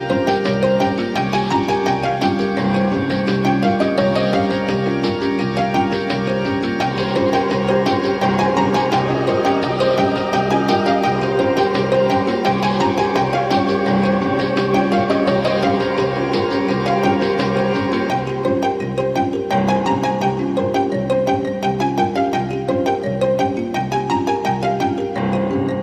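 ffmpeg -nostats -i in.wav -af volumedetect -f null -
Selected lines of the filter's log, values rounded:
mean_volume: -17.4 dB
max_volume: -3.4 dB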